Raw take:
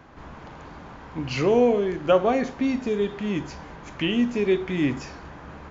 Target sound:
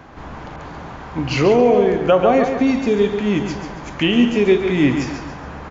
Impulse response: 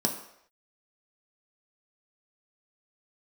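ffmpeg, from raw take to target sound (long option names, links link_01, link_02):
-filter_complex "[0:a]equalizer=frequency=750:width_type=o:width=0.29:gain=2.5,aecho=1:1:139|278|417|556|695:0.422|0.169|0.0675|0.027|0.0108,alimiter=level_in=11dB:limit=-1dB:release=50:level=0:latency=1,asettb=1/sr,asplit=3[link_01][link_02][link_03];[link_01]atrim=end=0.564[link_04];[link_02]atrim=start=0.56:end=2.67,asetpts=PTS-STARTPTS,afade=type=in:duration=0.004:curve=qsin,afade=type=out:start_time=2.106:duration=0.004:curve=qsin,adynamicequalizer=threshold=0.0251:dfrequency=3200:dqfactor=0.7:tfrequency=3200:tqfactor=0.7:attack=5:release=100:ratio=0.375:range=2.5:mode=cutabove:tftype=highshelf[link_05];[link_03]atrim=start=2.666[link_06];[link_04][link_05]acrossfade=duration=0.004:curve1=hsin:curve2=qsin[link_07];[link_07][link_06]acrossfade=duration=0.004:curve1=qsin:curve2=hsin,volume=-3.5dB"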